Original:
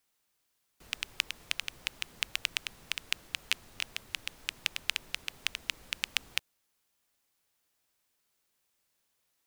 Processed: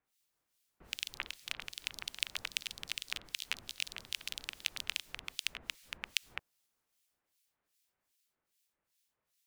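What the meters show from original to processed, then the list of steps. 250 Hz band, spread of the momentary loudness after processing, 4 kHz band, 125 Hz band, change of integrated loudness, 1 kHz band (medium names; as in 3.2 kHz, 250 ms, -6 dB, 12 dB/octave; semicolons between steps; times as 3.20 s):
-3.5 dB, 6 LU, -4.0 dB, -3.5 dB, -4.5 dB, -4.0 dB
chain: harmonic tremolo 2.5 Hz, depth 100%, crossover 2.1 kHz; ever faster or slower copies 206 ms, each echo +3 st, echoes 3, each echo -6 dB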